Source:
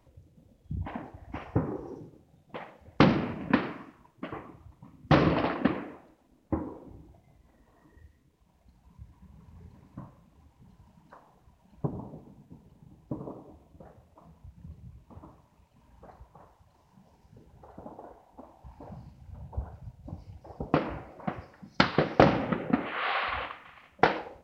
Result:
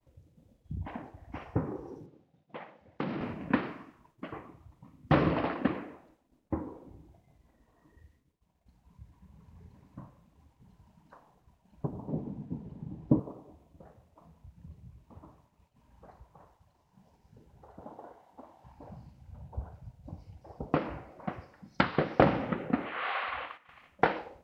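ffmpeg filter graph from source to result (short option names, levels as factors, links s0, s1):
-filter_complex "[0:a]asettb=1/sr,asplit=3[s0][s1][s2];[s0]atrim=end=2.064[s3];[s1]atrim=start=2.06:end=3.21,asetpts=PTS-STARTPTS,afade=t=in:d=0.004:c=qsin,afade=t=out:st=1.146:d=0.004:c=qsin,acompressor=threshold=0.0398:ratio=4:attack=3.2:release=140:knee=1:detection=peak,highpass=130,lowpass=4400[s4];[s2]atrim=start=3.206[s5];[s3][s4]acrossfade=d=0.004:c1=hsin:c2=qsin[s6];[s6][s5]acrossfade=d=0.004:c1=qsin:c2=hsin,asettb=1/sr,asplit=3[s7][s8][s9];[s7]atrim=end=12.084[s10];[s8]atrim=start=12.08:end=13.2,asetpts=PTS-STARTPTS,afade=t=in:d=0.004:c=qsin,afade=t=out:st=1.116:d=0.004:c=qsin,equalizer=f=220:t=o:w=2.8:g=9.5,acontrast=81,lowpass=f=2700:p=1[s11];[s9]atrim=start=13.196[s12];[s10][s11]acrossfade=d=0.004:c1=hsin:c2=qsin[s13];[s13][s12]acrossfade=d=0.004:c1=qsin:c2=hsin,asettb=1/sr,asplit=3[s14][s15][s16];[s14]atrim=end=17.814[s17];[s15]atrim=start=17.81:end=18.72,asetpts=PTS-STARTPTS,afade=t=in:d=0.004:c=qsin,afade=t=out:st=0.906:d=0.004:c=qsin,highpass=94,equalizer=f=2000:w=0.52:g=4.5,bandreject=f=2500:w=16[s18];[s16]atrim=start=18.716[s19];[s17][s18]acrossfade=d=0.004:c1=hsin:c2=qsin[s20];[s20][s19]acrossfade=d=0.004:c1=qsin:c2=hsin,asettb=1/sr,asplit=3[s21][s22][s23];[s21]atrim=end=23.064[s24];[s22]atrim=start=23.06:end=23.69,asetpts=PTS-STARTPTS,afade=t=in:d=0.004:c=qsin,afade=t=out:st=0.626:d=0.004:c=qsin,agate=range=0.398:threshold=0.00398:ratio=16:release=100:detection=peak,lowshelf=f=230:g=-10.5[s25];[s23]atrim=start=23.686[s26];[s24][s25]acrossfade=d=0.004:c1=hsin:c2=qsin[s27];[s27][s26]acrossfade=d=0.004:c1=qsin:c2=hsin,acrossover=split=3500[s28][s29];[s29]acompressor=threshold=0.00158:ratio=4:attack=1:release=60[s30];[s28][s30]amix=inputs=2:normalize=0,agate=range=0.0224:threshold=0.00112:ratio=3:detection=peak,volume=0.708"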